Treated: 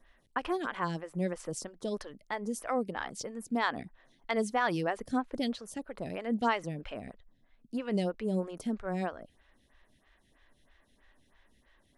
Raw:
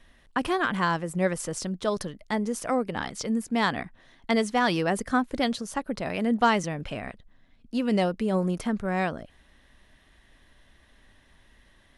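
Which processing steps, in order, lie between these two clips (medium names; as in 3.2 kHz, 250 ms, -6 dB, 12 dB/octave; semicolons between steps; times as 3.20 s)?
lamp-driven phase shifter 3.1 Hz; trim -4 dB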